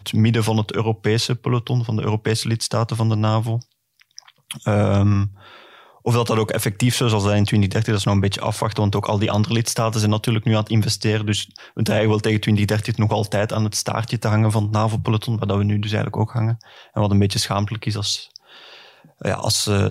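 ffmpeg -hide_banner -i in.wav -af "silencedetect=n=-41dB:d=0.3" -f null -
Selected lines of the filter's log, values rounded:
silence_start: 3.62
silence_end: 4.00 | silence_duration: 0.38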